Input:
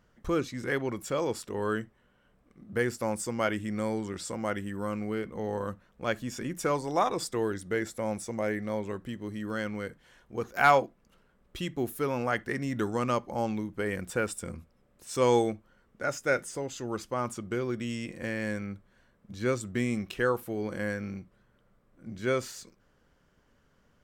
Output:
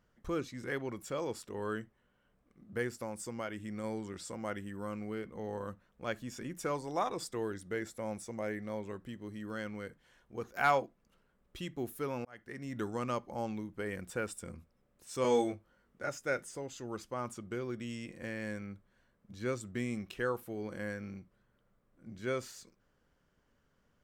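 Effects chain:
0:02.87–0:03.84: downward compressor 2.5 to 1, threshold −30 dBFS, peak gain reduction 6 dB
0:12.25–0:12.81: fade in
0:15.22–0:16.09: double-tracking delay 21 ms −3 dB
level −7 dB

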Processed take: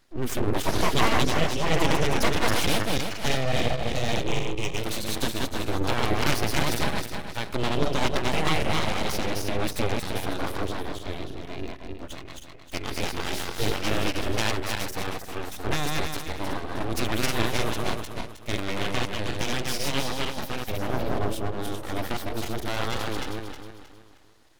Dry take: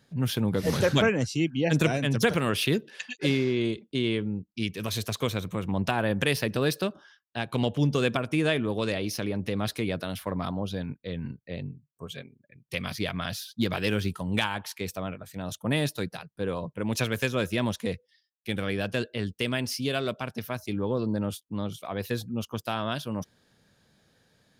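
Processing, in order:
feedback delay that plays each chunk backwards 157 ms, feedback 59%, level −1 dB
full-wave rectification
0:04.27–0:04.78: EQ curve with evenly spaced ripples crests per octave 0.71, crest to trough 8 dB
level +1.5 dB

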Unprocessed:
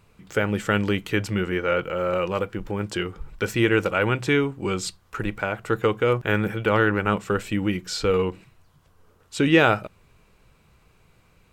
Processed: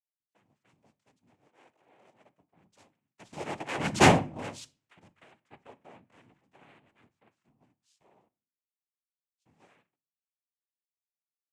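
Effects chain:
source passing by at 0:04.04, 23 m/s, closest 1.2 metres
cochlear-implant simulation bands 4
on a send at −17 dB: convolution reverb RT60 0.45 s, pre-delay 22 ms
on the sum: multiband upward and downward expander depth 70%
level −2.5 dB

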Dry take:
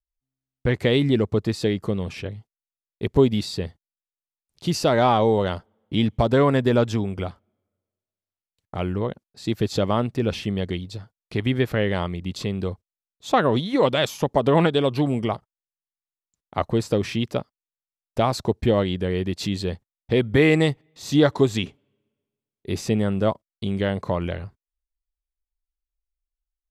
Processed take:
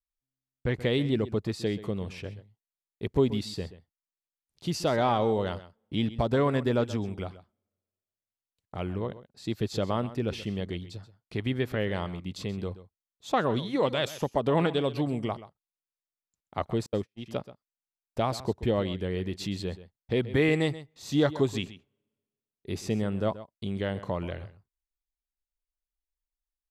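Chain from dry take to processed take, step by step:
single-tap delay 130 ms −15.5 dB
0:16.86–0:17.26: noise gate −20 dBFS, range −52 dB
level −7 dB

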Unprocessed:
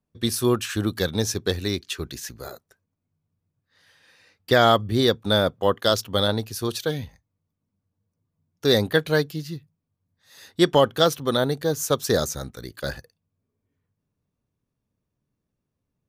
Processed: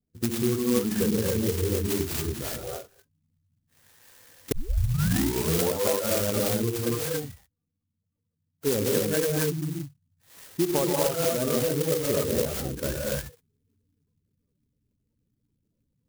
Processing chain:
0:06.79–0:08.67: low-shelf EQ 470 Hz −9.5 dB
reverb whose tail is shaped and stops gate 310 ms rising, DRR −4 dB
downward compressor 6 to 1, threshold −21 dBFS, peak gain reduction 13 dB
gate on every frequency bin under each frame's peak −15 dB strong
0:00.58–0:01.18: comb filter 4.5 ms, depth 71%
0:04.52: tape start 1.29 s
converter with an unsteady clock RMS 0.13 ms

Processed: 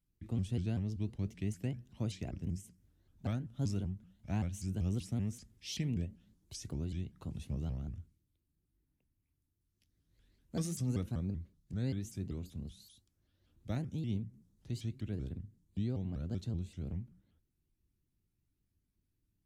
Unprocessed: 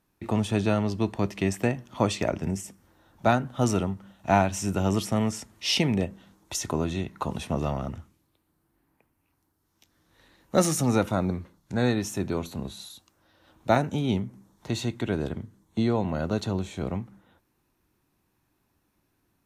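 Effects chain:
guitar amp tone stack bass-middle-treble 10-0-1
pitch modulation by a square or saw wave saw up 5.2 Hz, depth 250 cents
level +5 dB

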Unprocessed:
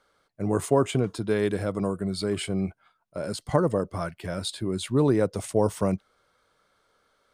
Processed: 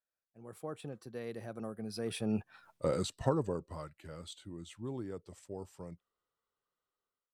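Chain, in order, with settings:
source passing by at 0:02.68, 38 m/s, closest 2.1 metres
automatic gain control gain up to 10.5 dB
level +1.5 dB

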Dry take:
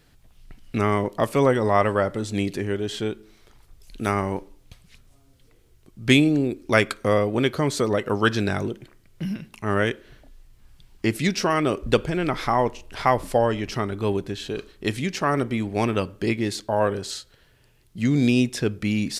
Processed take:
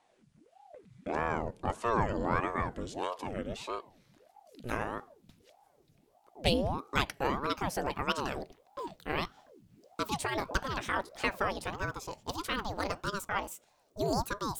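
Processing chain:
gliding playback speed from 65% → 198%
ring modulator whose carrier an LFO sweeps 470 Hz, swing 75%, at 1.6 Hz
level −8 dB

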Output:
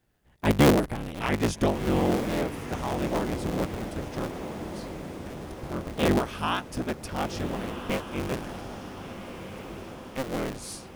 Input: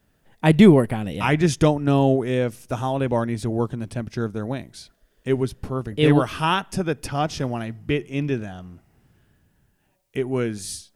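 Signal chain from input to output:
sub-harmonics by changed cycles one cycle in 3, inverted
0:04.32–0:05.51: downward compressor 10 to 1, threshold −35 dBFS, peak gain reduction 19.5 dB
on a send: feedback delay with all-pass diffusion 1,458 ms, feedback 56%, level −9.5 dB
on the sum: level −7 dB

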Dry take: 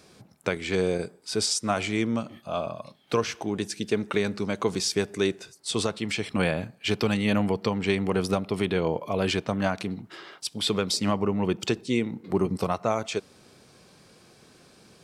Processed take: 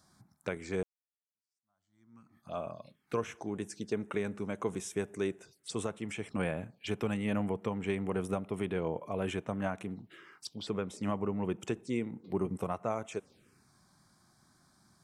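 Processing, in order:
0:00.83–0:02.48: fade in exponential
0:10.55–0:11.03: high-shelf EQ 4,500 Hz −11 dB
phaser swept by the level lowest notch 410 Hz, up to 4,600 Hz, full sweep at −26 dBFS
level −8 dB

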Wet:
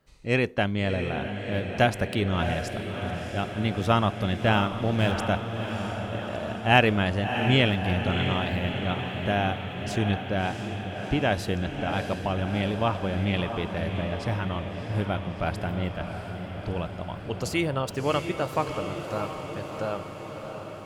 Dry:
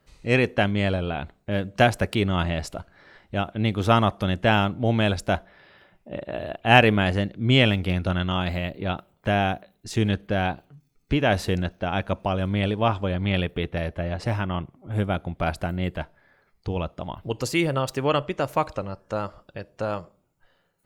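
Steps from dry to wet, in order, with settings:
0:04.70–0:05.18: slack as between gear wheels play −29 dBFS
feedback delay with all-pass diffusion 667 ms, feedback 68%, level −7.5 dB
level −3.5 dB

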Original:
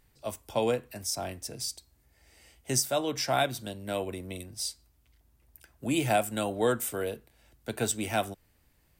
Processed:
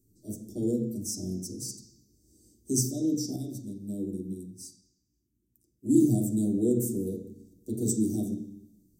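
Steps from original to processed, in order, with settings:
elliptic band-stop filter 370–6,300 Hz, stop band 50 dB
convolution reverb RT60 0.70 s, pre-delay 3 ms, DRR −5.5 dB
0:03.36–0:05.92: expander for the loud parts 1.5 to 1, over −40 dBFS
level −2 dB

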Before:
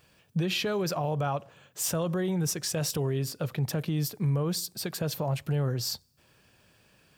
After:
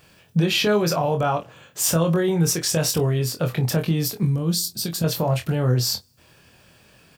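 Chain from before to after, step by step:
0:04.23–0:05.04: flat-topped bell 1,000 Hz −10 dB 3 octaves
on a send: ambience of single reflections 24 ms −5 dB, 48 ms −17 dB
on the sum: level +7.5 dB

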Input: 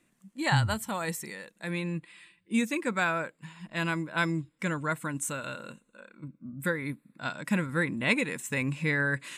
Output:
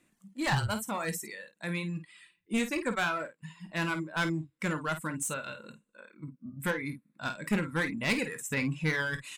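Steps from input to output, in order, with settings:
asymmetric clip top −28.5 dBFS, bottom −17.5 dBFS
reverb reduction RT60 1.1 s
ambience of single reflections 19 ms −12 dB, 51 ms −10.5 dB

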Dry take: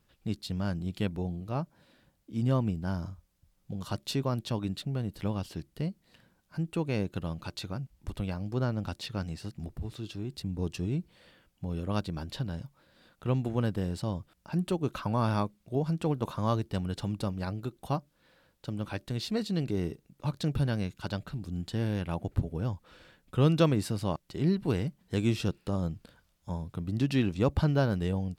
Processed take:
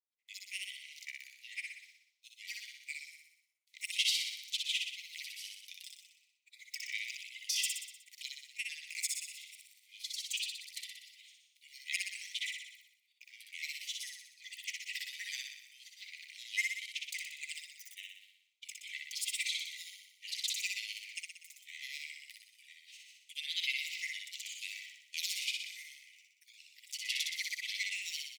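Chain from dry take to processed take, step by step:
granular cloud, pitch spread up and down by 12 semitones
downward expander −52 dBFS
Chebyshev high-pass filter 2,000 Hz, order 8
on a send: repeating echo 61 ms, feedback 59%, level −3.5 dB
on the sum: level +6.5 dB

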